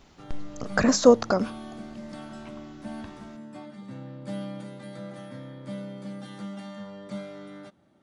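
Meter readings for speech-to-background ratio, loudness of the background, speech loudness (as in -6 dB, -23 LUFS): 18.0 dB, -40.0 LUFS, -22.0 LUFS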